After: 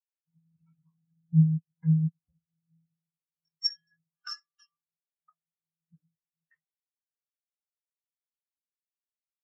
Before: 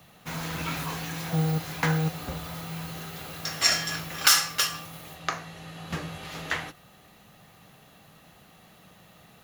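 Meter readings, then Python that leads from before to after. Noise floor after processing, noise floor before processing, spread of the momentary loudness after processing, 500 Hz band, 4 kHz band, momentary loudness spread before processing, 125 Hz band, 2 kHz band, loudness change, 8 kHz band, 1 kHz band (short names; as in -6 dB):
under -85 dBFS, -55 dBFS, 17 LU, under -30 dB, -11.5 dB, 17 LU, +2.0 dB, -27.5 dB, +0.5 dB, -32.5 dB, -27.0 dB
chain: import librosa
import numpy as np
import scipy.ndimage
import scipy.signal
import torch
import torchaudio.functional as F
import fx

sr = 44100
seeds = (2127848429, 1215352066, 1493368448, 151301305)

y = fx.spectral_expand(x, sr, expansion=4.0)
y = y * 10.0 ** (-8.0 / 20.0)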